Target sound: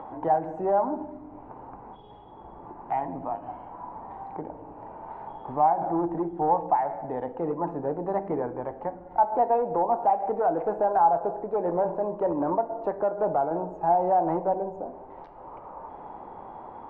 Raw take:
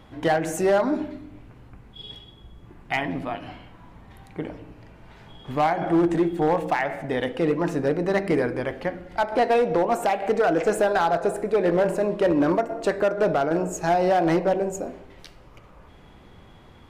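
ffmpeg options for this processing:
-filter_complex "[0:a]acrossover=split=240[s0][s1];[s1]acompressor=mode=upward:threshold=0.0562:ratio=2.5[s2];[s0][s2]amix=inputs=2:normalize=0,lowpass=f=880:t=q:w=4.9,volume=0.355"

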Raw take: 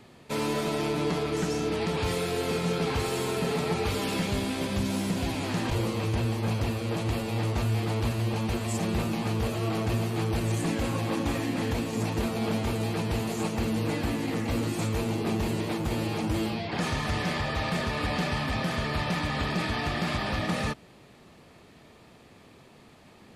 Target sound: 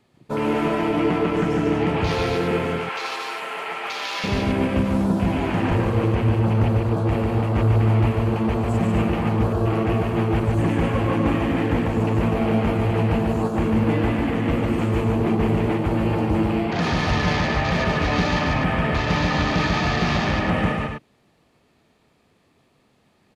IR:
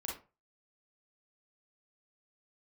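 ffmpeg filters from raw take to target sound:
-filter_complex "[0:a]afwtdn=0.0126,asettb=1/sr,asplit=3[s0][s1][s2];[s0]atrim=end=2.644[s3];[s1]atrim=start=2.64:end=4.24,asetpts=PTS-STARTPTS,afade=t=in:d=0.004:c=qsin,afade=t=out:st=1.596:d=0.004:c=qsin,highpass=990[s4];[s2]atrim=start=4.236[s5];[s3][s4]acrossfade=d=0.004:c1=hsin:c2=qsin[s6];[s6][s5]acrossfade=d=0.004:c1=qsin:c2=hsin,aecho=1:1:145.8|247.8:0.708|0.447,volume=2"

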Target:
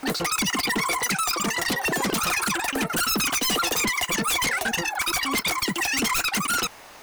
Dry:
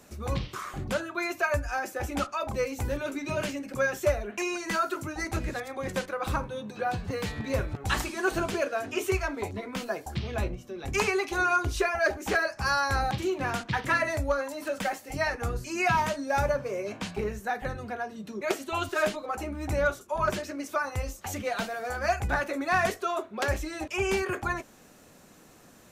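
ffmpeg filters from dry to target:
-af "asetrate=162729,aresample=44100,aeval=exprs='0.178*sin(PI/2*3.55*val(0)/0.178)':c=same,volume=0.562"

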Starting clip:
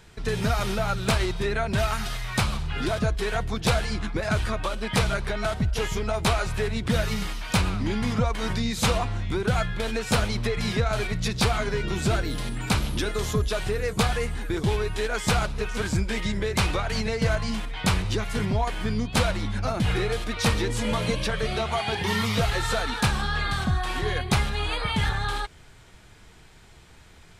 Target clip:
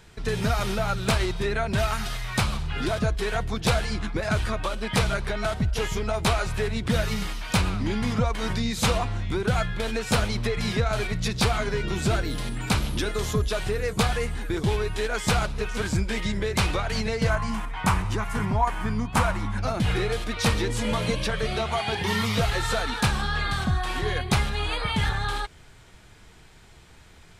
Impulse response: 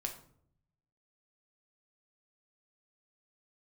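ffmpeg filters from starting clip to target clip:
-filter_complex "[0:a]asettb=1/sr,asplit=3[s0][s1][s2];[s0]atrim=end=17.304[s3];[s1]atrim=start=17.3:end=19.58,asetpts=PTS-STARTPTS,afade=t=in:d=0.004:c=qsin,afade=t=out:st=2.276:d=0.004:c=qsin,equalizer=f=500:t=o:w=1:g=-6,equalizer=f=1000:t=o:w=1:g=9,equalizer=f=4000:t=o:w=1:g=-9[s4];[s2]atrim=start=19.576[s5];[s3][s4]acrossfade=d=0.004:c1=hsin:c2=qsin[s6];[s6][s5]acrossfade=d=0.004:c1=qsin:c2=hsin"

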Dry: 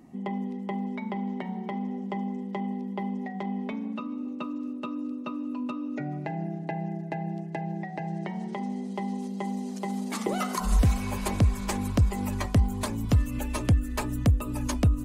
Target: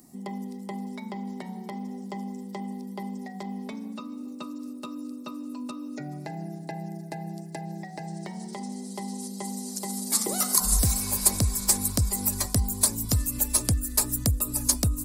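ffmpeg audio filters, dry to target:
-filter_complex "[0:a]equalizer=f=6400:w=4.2:g=-6.5,acrossover=split=1900[s0][s1];[s1]aexciter=amount=9:drive=6.9:freq=4300[s2];[s0][s2]amix=inputs=2:normalize=0,volume=0.668"

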